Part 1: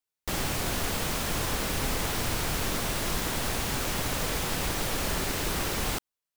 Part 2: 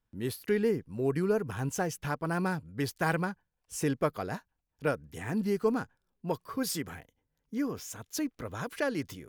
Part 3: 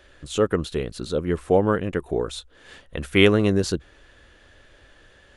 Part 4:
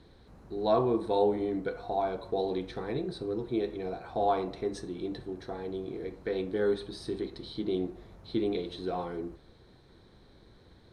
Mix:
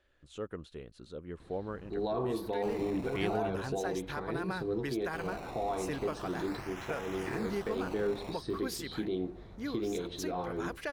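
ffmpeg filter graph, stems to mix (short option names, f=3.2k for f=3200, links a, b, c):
-filter_complex "[0:a]highpass=f=730:w=0.5412,highpass=f=730:w=1.3066,acrusher=samples=19:mix=1:aa=0.000001:lfo=1:lforange=19:lforate=0.38,adelay=2350,volume=-12dB,asplit=3[a][b][c];[a]atrim=end=3.37,asetpts=PTS-STARTPTS,afade=t=out:st=3.366:d=0.004:c=hsin[d];[b]atrim=start=3.37:end=5.13,asetpts=PTS-STARTPTS,volume=0[e];[c]atrim=start=5.13,asetpts=PTS-STARTPTS,afade=t=in:d=0.004:c=hsin[f];[d][e][f]concat=n=3:v=0:a=1[g];[1:a]agate=range=-33dB:threshold=-48dB:ratio=3:detection=peak,adelay=2050,volume=0dB[h];[2:a]volume=-19dB[i];[3:a]lowshelf=f=350:g=10,adelay=1400,volume=1dB[j];[h][j]amix=inputs=2:normalize=0,lowshelf=f=490:g=-9.5,alimiter=level_in=0.5dB:limit=-24dB:level=0:latency=1:release=183,volume=-0.5dB,volume=0dB[k];[g][i][k]amix=inputs=3:normalize=0,highshelf=f=6.6k:g=-8.5"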